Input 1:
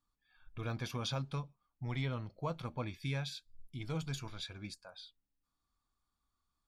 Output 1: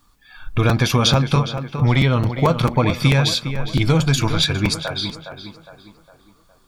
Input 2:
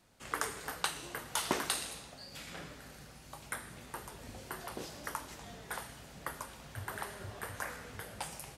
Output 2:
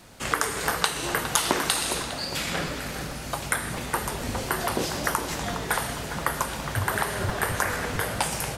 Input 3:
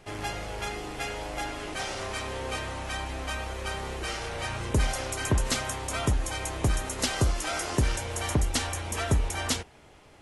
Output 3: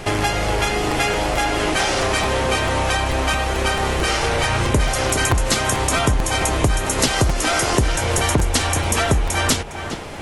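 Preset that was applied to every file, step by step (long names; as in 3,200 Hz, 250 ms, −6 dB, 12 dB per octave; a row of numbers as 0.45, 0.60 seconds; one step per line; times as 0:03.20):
downward compressor 4 to 1, threshold −39 dBFS
on a send: tape delay 410 ms, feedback 48%, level −8 dB, low-pass 2,300 Hz
on the sum: regular buffer underruns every 0.22 s, samples 256, repeat, from 0:00.69
normalise the peak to −3 dBFS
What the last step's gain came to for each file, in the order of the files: +26.5, +17.5, +21.5 decibels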